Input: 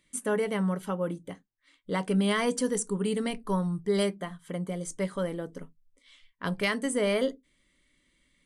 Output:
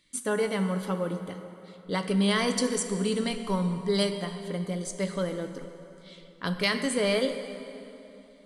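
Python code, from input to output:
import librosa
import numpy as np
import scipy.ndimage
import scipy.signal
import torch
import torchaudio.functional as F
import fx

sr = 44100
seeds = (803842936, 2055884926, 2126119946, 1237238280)

y = fx.peak_eq(x, sr, hz=4300.0, db=10.0, octaves=0.65)
y = fx.rev_plate(y, sr, seeds[0], rt60_s=3.1, hf_ratio=0.7, predelay_ms=0, drr_db=7.0)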